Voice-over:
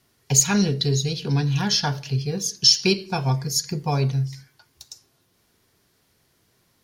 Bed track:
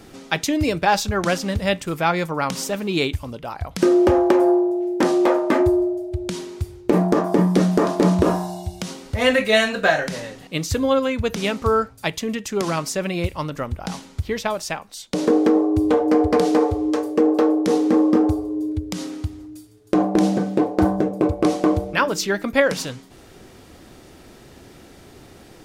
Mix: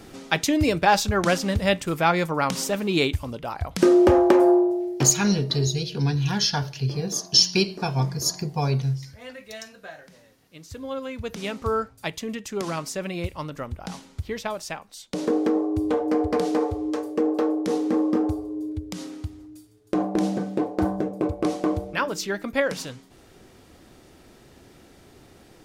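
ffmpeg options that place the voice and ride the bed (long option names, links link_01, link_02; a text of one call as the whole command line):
ffmpeg -i stem1.wav -i stem2.wav -filter_complex "[0:a]adelay=4700,volume=-1.5dB[link_01];[1:a]volume=17dB,afade=type=out:start_time=4.61:duration=0.6:silence=0.0707946,afade=type=in:start_time=10.51:duration=1.22:silence=0.133352[link_02];[link_01][link_02]amix=inputs=2:normalize=0" out.wav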